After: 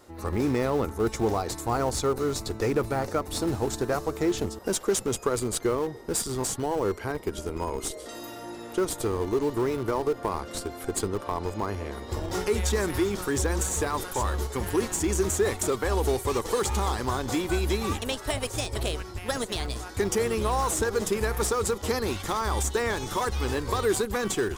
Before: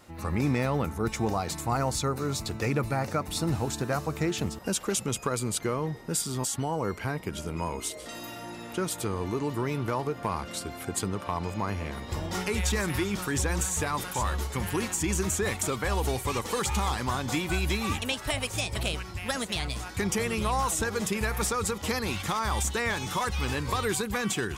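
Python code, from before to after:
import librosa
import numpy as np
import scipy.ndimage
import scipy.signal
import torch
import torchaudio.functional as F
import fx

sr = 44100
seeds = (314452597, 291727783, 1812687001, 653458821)

p1 = fx.graphic_eq_15(x, sr, hz=(160, 400, 2500), db=(-9, 7, -6))
p2 = fx.schmitt(p1, sr, flips_db=-26.5)
y = p1 + (p2 * 10.0 ** (-10.0 / 20.0))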